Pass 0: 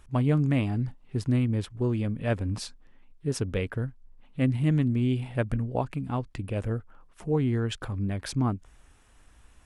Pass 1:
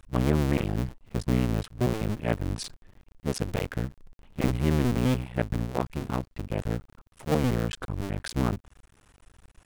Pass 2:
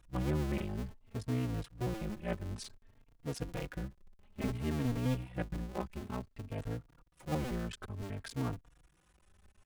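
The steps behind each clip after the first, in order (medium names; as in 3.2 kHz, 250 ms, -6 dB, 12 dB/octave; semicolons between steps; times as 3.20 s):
cycle switcher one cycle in 2, muted; trim +2.5 dB
endless flanger 3.7 ms +0.57 Hz; trim -6.5 dB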